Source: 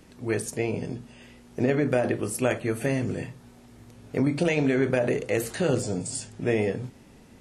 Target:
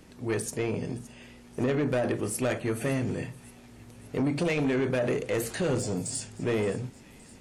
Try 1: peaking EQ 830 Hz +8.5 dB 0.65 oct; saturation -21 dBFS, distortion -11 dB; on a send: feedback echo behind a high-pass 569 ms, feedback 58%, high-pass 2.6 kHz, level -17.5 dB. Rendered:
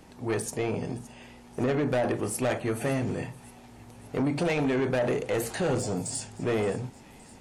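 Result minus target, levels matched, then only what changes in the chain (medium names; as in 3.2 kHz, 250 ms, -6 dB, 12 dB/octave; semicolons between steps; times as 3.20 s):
1 kHz band +3.5 dB
remove: peaking EQ 830 Hz +8.5 dB 0.65 oct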